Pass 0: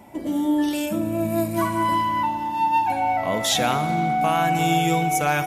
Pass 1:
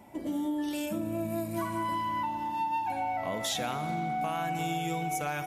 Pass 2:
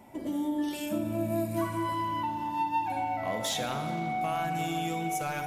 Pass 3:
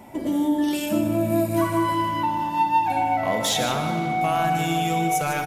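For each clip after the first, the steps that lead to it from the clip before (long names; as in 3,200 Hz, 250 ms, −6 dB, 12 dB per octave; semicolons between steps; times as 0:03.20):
downward compressor, threshold −22 dBFS, peak gain reduction 6.5 dB; level −6.5 dB
gain into a clipping stage and back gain 24 dB; convolution reverb RT60 2.6 s, pre-delay 8 ms, DRR 7.5 dB
single-tap delay 152 ms −10 dB; level +8.5 dB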